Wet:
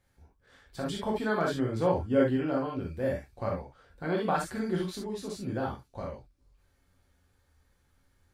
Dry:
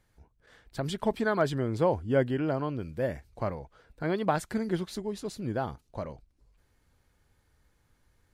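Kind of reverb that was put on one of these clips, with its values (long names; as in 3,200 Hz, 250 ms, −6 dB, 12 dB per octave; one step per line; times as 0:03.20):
reverb whose tail is shaped and stops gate 90 ms flat, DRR −3 dB
level −5 dB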